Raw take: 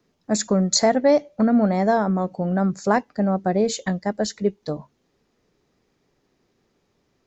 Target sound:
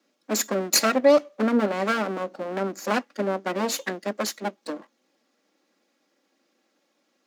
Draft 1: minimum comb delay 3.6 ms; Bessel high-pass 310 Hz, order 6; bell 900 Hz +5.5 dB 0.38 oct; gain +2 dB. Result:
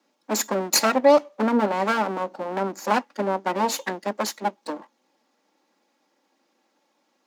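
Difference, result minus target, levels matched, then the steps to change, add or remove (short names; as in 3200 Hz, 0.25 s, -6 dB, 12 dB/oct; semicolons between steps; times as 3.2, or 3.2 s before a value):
1000 Hz band +4.0 dB
change: bell 900 Hz -5 dB 0.38 oct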